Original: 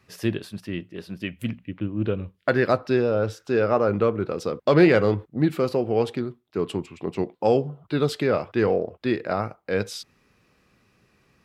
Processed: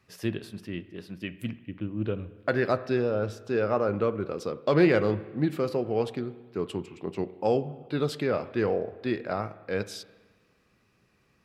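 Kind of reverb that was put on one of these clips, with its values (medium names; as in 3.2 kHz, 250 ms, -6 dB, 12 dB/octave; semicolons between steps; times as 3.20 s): spring tank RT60 1.4 s, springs 33/56 ms, chirp 50 ms, DRR 15 dB; trim -5 dB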